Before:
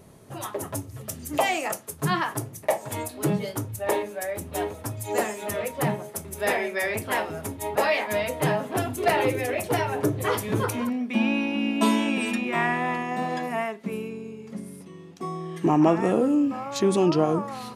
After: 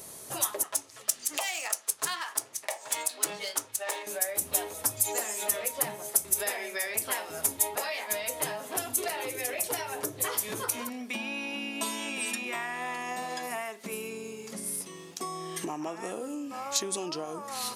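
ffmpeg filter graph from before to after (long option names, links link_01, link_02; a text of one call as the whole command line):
ffmpeg -i in.wav -filter_complex "[0:a]asettb=1/sr,asplit=3[link_01][link_02][link_03];[link_01]atrim=end=0.634[link_04];[link_02]atrim=start=0.63:end=4.07,asetpts=PTS-STARTPTS,afade=type=in:duration=0.004:curve=qsin,afade=type=out:start_time=3.436:duration=0.004:curve=qsin,highpass=frequency=1200:poles=1,adynamicsmooth=sensitivity=7.5:basefreq=4300[link_05];[link_03]atrim=start=4.066[link_06];[link_04][link_05]acrossfade=duration=0.004:curve1=hsin:curve2=qsin[link_07];[link_07][link_06]acrossfade=duration=0.004:curve1=qsin:curve2=hsin,lowshelf=frequency=430:gain=-8.5,acompressor=threshold=-38dB:ratio=6,bass=frequency=250:gain=-6,treble=frequency=4000:gain=13,volume=5dB" out.wav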